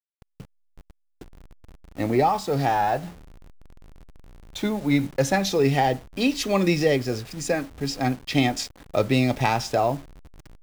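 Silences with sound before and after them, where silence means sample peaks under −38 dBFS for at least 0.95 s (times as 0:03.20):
0:03.13–0:04.55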